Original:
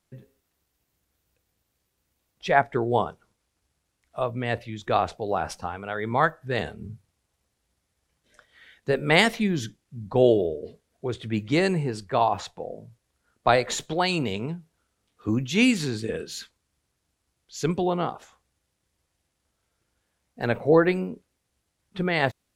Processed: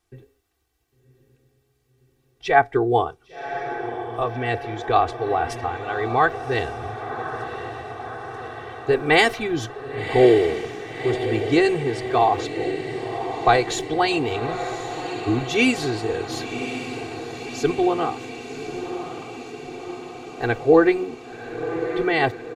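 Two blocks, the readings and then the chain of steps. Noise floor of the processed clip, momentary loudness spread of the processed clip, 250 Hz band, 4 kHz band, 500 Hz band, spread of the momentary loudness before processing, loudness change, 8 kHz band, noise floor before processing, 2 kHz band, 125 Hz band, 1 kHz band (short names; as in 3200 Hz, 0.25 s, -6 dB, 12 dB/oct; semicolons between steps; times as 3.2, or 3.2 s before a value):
-66 dBFS, 17 LU, +3.0 dB, +2.5 dB, +5.0 dB, 17 LU, +2.5 dB, +1.0 dB, -77 dBFS, +4.0 dB, +0.5 dB, +5.5 dB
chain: high shelf 5200 Hz -5 dB; comb 2.6 ms, depth 93%; on a send: diffused feedback echo 1.088 s, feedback 67%, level -9.5 dB; on the sum: gain +1 dB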